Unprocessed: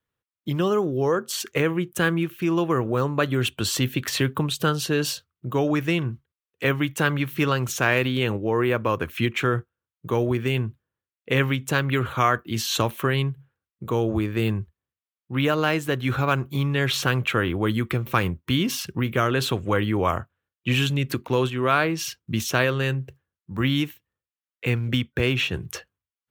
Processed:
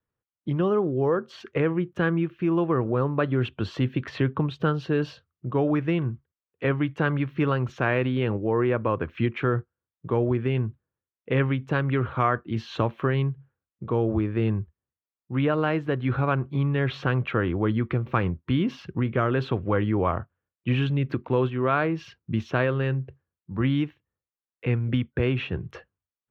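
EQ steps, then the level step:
high-frequency loss of the air 250 metres
high-shelf EQ 2,600 Hz −10.5 dB
0.0 dB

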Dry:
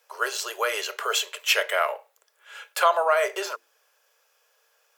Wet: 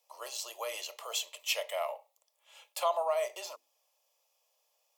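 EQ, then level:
phaser with its sweep stopped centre 410 Hz, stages 6
−7.0 dB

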